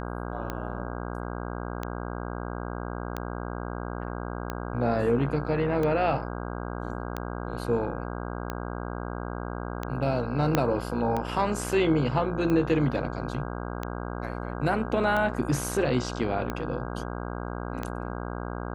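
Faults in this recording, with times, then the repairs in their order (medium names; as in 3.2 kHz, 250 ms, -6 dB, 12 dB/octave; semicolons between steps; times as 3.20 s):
buzz 60 Hz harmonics 27 -34 dBFS
tick 45 rpm -17 dBFS
10.55 s: pop -8 dBFS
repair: de-click; de-hum 60 Hz, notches 27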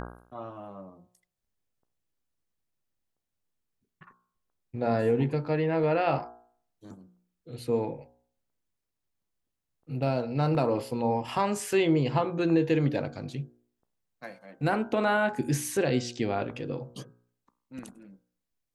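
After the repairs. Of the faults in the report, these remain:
10.55 s: pop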